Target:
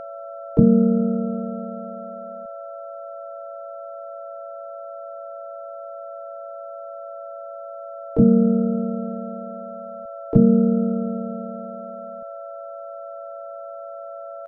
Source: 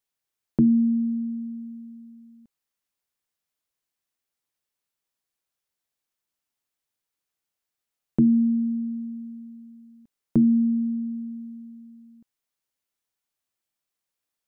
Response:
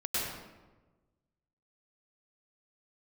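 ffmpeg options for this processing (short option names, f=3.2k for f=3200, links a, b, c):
-filter_complex "[0:a]bass=f=250:g=11,treble=f=4k:g=0,aeval=exprs='val(0)+0.0316*sin(2*PI*670*n/s)':c=same,asplit=4[a][b][c][d];[b]asetrate=33038,aresample=44100,atempo=1.33484,volume=-18dB[e];[c]asetrate=37084,aresample=44100,atempo=1.18921,volume=-2dB[f];[d]asetrate=88200,aresample=44100,atempo=0.5,volume=-6dB[g];[a][e][f][g]amix=inputs=4:normalize=0,volume=-5dB"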